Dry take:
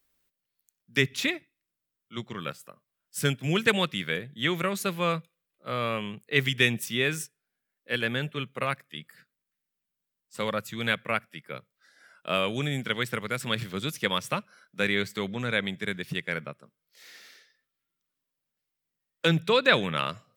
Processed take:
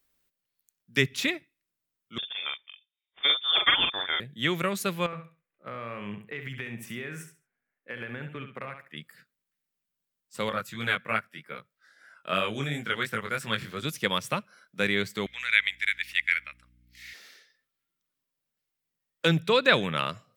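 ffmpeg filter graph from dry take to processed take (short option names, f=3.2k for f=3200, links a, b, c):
-filter_complex "[0:a]asettb=1/sr,asplit=3[a][b][c];[a]atrim=end=2.184[d];[b]atrim=start=2.18:end=4.2,asetpts=PTS-STARTPTS,afade=t=in:d=0.004:c=qsin,afade=t=out:st=2.016:d=0.004:c=qsin,adynamicsmooth=sensitivity=6:basefreq=1.4k,lowpass=f=3.1k:t=q:w=0.5098,lowpass=f=3.1k:t=q:w=0.6013,lowpass=f=3.1k:t=q:w=0.9,lowpass=f=3.1k:t=q:w=2.563,afreqshift=-3700,asplit=2[e][f];[f]adelay=43,volume=-3.5dB[g];[e][g]amix=inputs=2:normalize=0,atrim=end_sample=89082[h];[c]atrim=start=4.196[i];[d][h]acrossfade=d=0.004:c1=hsin:c2=qsin[j];[j][i]acrossfade=d=0.004:c1=qsin:c2=hsin,asettb=1/sr,asplit=3[k][l][m];[k]atrim=end=5.064[n];[l]atrim=start=5.06:end=8.97,asetpts=PTS-STARTPTS,afade=t=in:d=0.004:c=qsin,afade=t=out:st=3.906:d=0.004:c=qsin,highshelf=f=2.9k:t=q:w=1.5:g=-10.5,acompressor=threshold=-33dB:ratio=8:attack=3.2:release=140:knee=1:detection=peak,aecho=1:1:68|136|204:0.398|0.0916|0.0211,atrim=end_sample=172431[o];[m]atrim=start=8.966[p];[n][o]acrossfade=d=0.004:c1=hsin:c2=qsin[q];[q][p]acrossfade=d=0.004:c1=qsin:c2=hsin,asettb=1/sr,asplit=3[r][s][t];[r]atrim=end=10.494[u];[s]atrim=start=10.49:end=13.85,asetpts=PTS-STARTPTS,afade=t=in:d=0.004:c=qsin,afade=t=out:st=3.356:d=0.004:c=qsin,equalizer=f=1.5k:w=1.4:g=5.5,flanger=delay=18:depth=4.2:speed=3[v];[t]atrim=start=13.846[w];[u][v]acrossfade=d=0.004:c1=hsin:c2=qsin[x];[x][w]acrossfade=d=0.004:c1=qsin:c2=hsin,asettb=1/sr,asplit=3[y][z][aa];[y]atrim=end=15.264[ab];[z]atrim=start=15.26:end=17.14,asetpts=PTS-STARTPTS,afade=t=in:d=0.004:c=qsin,afade=t=out:st=1.876:d=0.004:c=qsin,highpass=f=2.1k:t=q:w=3.2,aeval=exprs='val(0)+0.000891*(sin(2*PI*60*n/s)+sin(2*PI*2*60*n/s)/2+sin(2*PI*3*60*n/s)/3+sin(2*PI*4*60*n/s)/4+sin(2*PI*5*60*n/s)/5)':c=same[ac];[aa]atrim=start=17.136[ad];[ab][ac]acrossfade=d=0.004:c1=hsin:c2=qsin[ae];[ae][ad]acrossfade=d=0.004:c1=qsin:c2=hsin"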